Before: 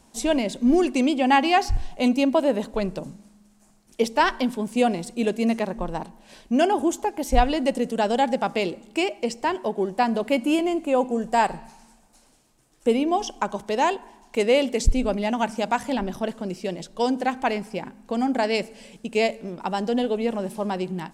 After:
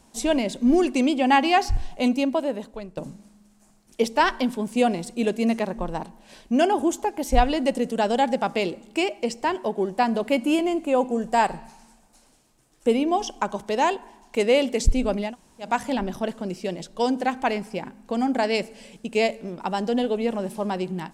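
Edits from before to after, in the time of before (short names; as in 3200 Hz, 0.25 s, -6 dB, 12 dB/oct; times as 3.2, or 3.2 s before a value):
1.94–2.97 fade out linear, to -16 dB
15.28–15.66 room tone, crossfade 0.16 s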